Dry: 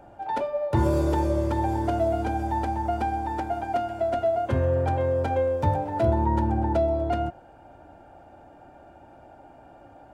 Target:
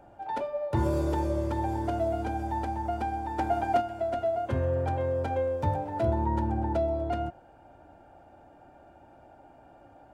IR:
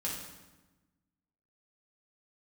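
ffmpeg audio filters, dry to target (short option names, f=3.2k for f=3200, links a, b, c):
-filter_complex "[0:a]asplit=3[a][b][c];[a]afade=t=out:st=3.38:d=0.02[d];[b]acontrast=53,afade=t=in:st=3.38:d=0.02,afade=t=out:st=3.8:d=0.02[e];[c]afade=t=in:st=3.8:d=0.02[f];[d][e][f]amix=inputs=3:normalize=0,volume=-4.5dB"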